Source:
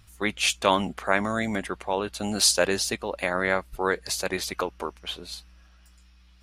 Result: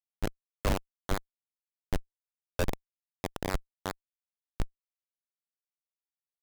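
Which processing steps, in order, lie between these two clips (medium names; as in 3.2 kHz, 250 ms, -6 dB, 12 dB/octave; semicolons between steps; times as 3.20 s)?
tilt EQ -2.5 dB/octave; Schmitt trigger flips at -14.5 dBFS; trim +1.5 dB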